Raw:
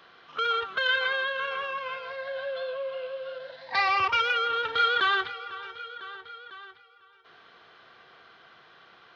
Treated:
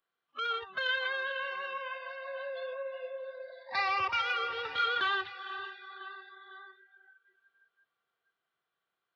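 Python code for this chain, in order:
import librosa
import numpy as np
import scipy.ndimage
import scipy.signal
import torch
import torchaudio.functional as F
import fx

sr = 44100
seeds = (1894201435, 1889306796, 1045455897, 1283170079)

y = fx.echo_diffused(x, sr, ms=468, feedback_pct=55, wet_db=-10.5)
y = fx.noise_reduce_blind(y, sr, reduce_db=27)
y = y * librosa.db_to_amplitude(-6.0)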